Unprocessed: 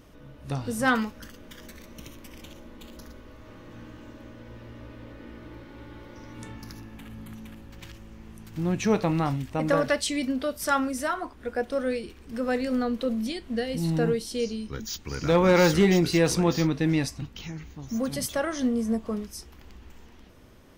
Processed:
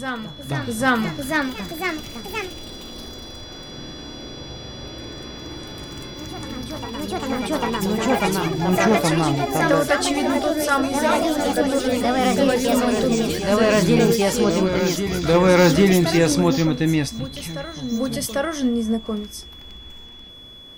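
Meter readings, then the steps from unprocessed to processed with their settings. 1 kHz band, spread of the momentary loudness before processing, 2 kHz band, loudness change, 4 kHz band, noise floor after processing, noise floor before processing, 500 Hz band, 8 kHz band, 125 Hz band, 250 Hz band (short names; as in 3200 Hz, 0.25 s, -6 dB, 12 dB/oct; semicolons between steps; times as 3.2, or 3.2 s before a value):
+9.0 dB, 23 LU, +8.0 dB, +6.0 dB, +9.5 dB, -40 dBFS, -50 dBFS, +7.5 dB, +8.0 dB, +5.5 dB, +7.0 dB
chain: whine 3400 Hz -45 dBFS; echoes that change speed 0.617 s, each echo +3 st, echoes 3; reverse echo 0.797 s -9.5 dB; gain +4.5 dB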